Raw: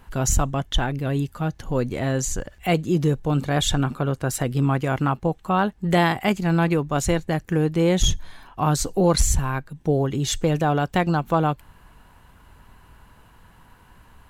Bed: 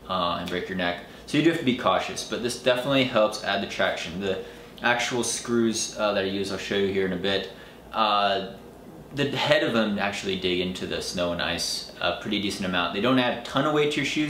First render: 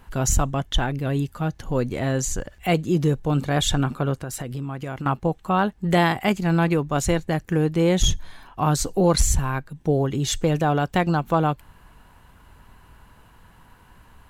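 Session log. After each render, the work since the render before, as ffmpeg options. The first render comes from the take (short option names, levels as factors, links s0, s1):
-filter_complex "[0:a]asettb=1/sr,asplit=3[s0][s1][s2];[s0]atrim=end=4.164[s3];[s1]atrim=start=4.16:end=5.06,asetpts=PTS-STARTPTS,afade=t=in:d=0.004:c=qsin,afade=t=out:st=0.896:d=0.004:c=qsin,acompressor=threshold=0.0447:ratio=6:attack=3.2:release=140:knee=1:detection=peak[s4];[s2]atrim=start=5.056[s5];[s3][s4]acrossfade=d=0.004:c1=hsin:c2=qsin[s6];[s6][s5]acrossfade=d=0.004:c1=qsin:c2=hsin"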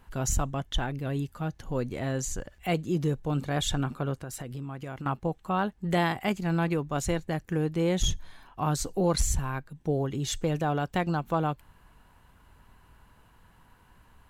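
-af "volume=0.447"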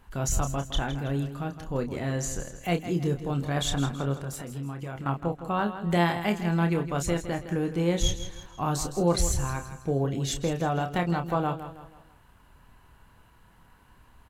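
-filter_complex "[0:a]asplit=2[s0][s1];[s1]adelay=29,volume=0.422[s2];[s0][s2]amix=inputs=2:normalize=0,asplit=2[s3][s4];[s4]aecho=0:1:162|324|486|648:0.266|0.112|0.0469|0.0197[s5];[s3][s5]amix=inputs=2:normalize=0"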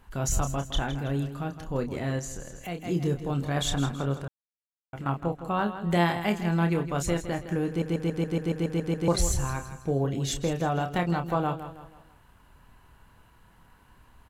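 -filter_complex "[0:a]asettb=1/sr,asplit=3[s0][s1][s2];[s0]atrim=end=2.194[s3];[s1]atrim=start=2.19:end=2.82,asetpts=PTS-STARTPTS,afade=t=in:d=0.004:c=qsin,afade=t=out:st=0.626:d=0.004:c=qsin,acompressor=threshold=0.0141:ratio=2:attack=3.2:release=140:knee=1:detection=peak[s4];[s2]atrim=start=2.816[s5];[s3][s4]acrossfade=d=0.004:c1=hsin:c2=qsin[s6];[s6][s5]acrossfade=d=0.004:c1=qsin:c2=hsin,asplit=13[s7][s8][s9][s10][s11][s12][s13][s14][s15][s16][s17][s18][s19];[s7]atrim=end=4.28,asetpts=PTS-STARTPTS,afade=t=out:st=4.276:d=0.004:c=hsin[s20];[s8]atrim=start=4.28:end=4.93,asetpts=PTS-STARTPTS,volume=0[s21];[s9]atrim=start=4.93:end=7.822,asetpts=PTS-STARTPTS,afade=t=in:d=0.004:c=hsin[s22];[s10]atrim=start=7.678:end=7.822[s23];[s11]atrim=start=7.678:end=7.822[s24];[s12]atrim=start=7.678:end=7.822[s25];[s13]atrim=start=7.678:end=7.822[s26];[s14]atrim=start=7.678:end=7.822[s27];[s15]atrim=start=7.678:end=7.822[s28];[s16]atrim=start=7.678:end=7.822[s29];[s17]atrim=start=7.678:end=7.822[s30];[s18]atrim=start=7.678:end=7.822[s31];[s19]atrim=start=9.078[s32];[s20][s21][s22]concat=n=3:v=0:a=1[s33];[s33][s23]acrossfade=d=0.004:c1=hsin:c2=hsin[s34];[s34][s24]acrossfade=d=0.004:c1=hsin:c2=hsin[s35];[s35][s25]acrossfade=d=0.004:c1=hsin:c2=hsin[s36];[s36][s26]acrossfade=d=0.004:c1=hsin:c2=hsin[s37];[s37][s27]acrossfade=d=0.004:c1=hsin:c2=hsin[s38];[s38][s28]acrossfade=d=0.004:c1=hsin:c2=hsin[s39];[s39][s29]acrossfade=d=0.004:c1=hsin:c2=hsin[s40];[s40][s30]acrossfade=d=0.004:c1=hsin:c2=hsin[s41];[s41][s31]acrossfade=d=0.004:c1=hsin:c2=hsin[s42];[s42][s32]acrossfade=d=0.004:c1=hsin:c2=hsin"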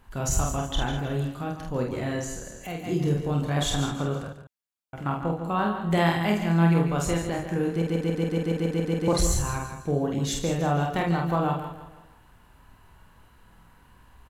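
-filter_complex "[0:a]asplit=2[s0][s1];[s1]adelay=48,volume=0.668[s2];[s0][s2]amix=inputs=2:normalize=0,aecho=1:1:144:0.299"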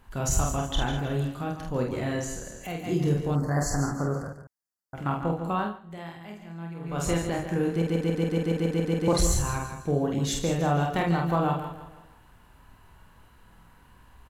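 -filter_complex "[0:a]asettb=1/sr,asplit=3[s0][s1][s2];[s0]atrim=end=3.354[s3];[s1]atrim=start=3.35:end=4.95,asetpts=PTS-STARTPTS,afade=t=in:d=0.004:c=qsin,afade=t=out:st=1.596:d=0.004:c=qsin,asuperstop=centerf=3000:order=20:qfactor=1.3[s4];[s2]atrim=start=4.946[s5];[s3][s4]acrossfade=d=0.004:c1=hsin:c2=qsin[s6];[s6][s5]acrossfade=d=0.004:c1=qsin:c2=hsin,asplit=3[s7][s8][s9];[s7]atrim=end=5.8,asetpts=PTS-STARTPTS,afade=t=out:st=5.51:d=0.29:silence=0.125893[s10];[s8]atrim=start=5.8:end=6.8,asetpts=PTS-STARTPTS,volume=0.126[s11];[s9]atrim=start=6.8,asetpts=PTS-STARTPTS,afade=t=in:d=0.29:silence=0.125893[s12];[s10][s11][s12]concat=n=3:v=0:a=1"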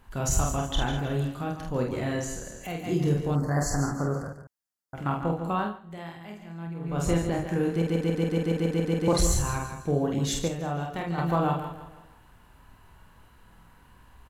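-filter_complex "[0:a]asettb=1/sr,asplit=3[s0][s1][s2];[s0]atrim=end=6.674[s3];[s1]atrim=start=6.67:end=7.46,asetpts=PTS-STARTPTS,afade=t=in:d=0.004:c=qsin,afade=t=out:st=0.786:d=0.004:c=qsin,tiltshelf=f=640:g=3[s4];[s2]atrim=start=7.456[s5];[s3][s4]acrossfade=d=0.004:c1=hsin:c2=qsin[s6];[s6][s5]acrossfade=d=0.004:c1=qsin:c2=hsin,asplit=3[s7][s8][s9];[s7]atrim=end=10.482[s10];[s8]atrim=start=10.478:end=11.182,asetpts=PTS-STARTPTS,volume=0.473[s11];[s9]atrim=start=11.178[s12];[s10][s11]acrossfade=d=0.004:c1=hsin:c2=hsin[s13];[s13][s12]acrossfade=d=0.004:c1=hsin:c2=hsin"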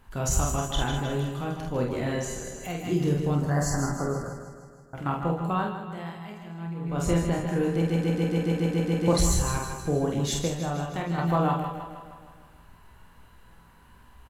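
-filter_complex "[0:a]asplit=2[s0][s1];[s1]adelay=17,volume=0.237[s2];[s0][s2]amix=inputs=2:normalize=0,aecho=1:1:157|314|471|628|785|942|1099:0.316|0.187|0.11|0.0649|0.0383|0.0226|0.0133"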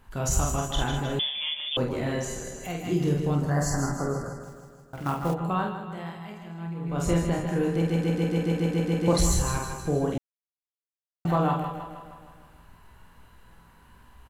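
-filter_complex "[0:a]asettb=1/sr,asplit=3[s0][s1][s2];[s0]atrim=end=1.194[s3];[s1]atrim=start=1.19:end=1.77,asetpts=PTS-STARTPTS,afade=t=in:d=0.004:c=qsin,afade=t=out:st=0.576:d=0.004:c=qsin,lowpass=f=3100:t=q:w=0.5098,lowpass=f=3100:t=q:w=0.6013,lowpass=f=3100:t=q:w=0.9,lowpass=f=3100:t=q:w=2.563,afreqshift=-3600[s4];[s2]atrim=start=1.766[s5];[s3][s4]acrossfade=d=0.004:c1=hsin:c2=qsin[s6];[s6][s5]acrossfade=d=0.004:c1=qsin:c2=hsin,asplit=3[s7][s8][s9];[s7]afade=t=out:st=4.42:d=0.02[s10];[s8]acrusher=bits=5:mode=log:mix=0:aa=0.000001,afade=t=in:st=4.42:d=0.02,afade=t=out:st=5.33:d=0.02[s11];[s9]afade=t=in:st=5.33:d=0.02[s12];[s10][s11][s12]amix=inputs=3:normalize=0,asplit=3[s13][s14][s15];[s13]atrim=end=10.18,asetpts=PTS-STARTPTS,afade=t=out:st=10.176:d=0.004:c=hsin[s16];[s14]atrim=start=10.18:end=11.25,asetpts=PTS-STARTPTS,volume=0[s17];[s15]atrim=start=11.25,asetpts=PTS-STARTPTS,afade=t=in:d=0.004:c=hsin[s18];[s16][s17][s18]concat=n=3:v=0:a=1"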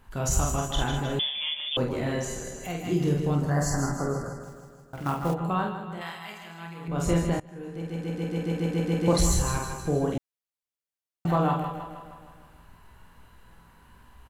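-filter_complex "[0:a]asettb=1/sr,asplit=3[s0][s1][s2];[s0]atrim=end=6.014[s3];[s1]atrim=start=6.01:end=6.88,asetpts=PTS-STARTPTS,afade=t=in:d=0.004:c=qsin,afade=t=out:st=0.866:d=0.004:c=qsin,tiltshelf=f=700:g=-9.5[s4];[s2]atrim=start=6.876[s5];[s3][s4]acrossfade=d=0.004:c1=hsin:c2=qsin[s6];[s6][s5]acrossfade=d=0.004:c1=qsin:c2=hsin,asplit=2[s7][s8];[s7]atrim=end=7.4,asetpts=PTS-STARTPTS,afade=t=out:st=7.396:d=0.004:c=hsin:silence=0.0841395[s9];[s8]atrim=start=7.4,asetpts=PTS-STARTPTS,afade=t=in:d=1.61:silence=0.0841395[s10];[s9][s10]concat=n=2:v=0:a=1"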